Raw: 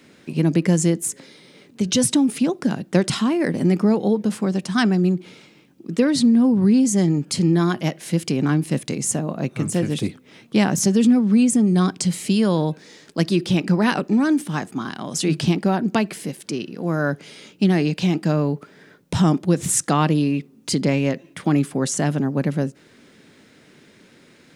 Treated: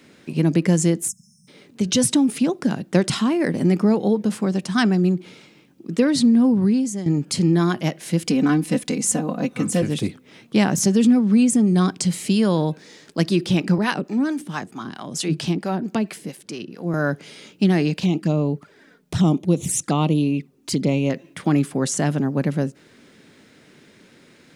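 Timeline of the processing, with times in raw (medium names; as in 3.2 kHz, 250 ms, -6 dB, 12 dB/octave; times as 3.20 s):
1.08–1.48 s: spectral selection erased 220–5200 Hz
6.53–7.06 s: fade out, to -13.5 dB
8.26–9.82 s: comb 4 ms, depth 75%
13.78–16.94 s: harmonic tremolo 4.5 Hz, crossover 520 Hz
18.00–21.10 s: touch-sensitive flanger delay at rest 5.4 ms, full sweep at -16.5 dBFS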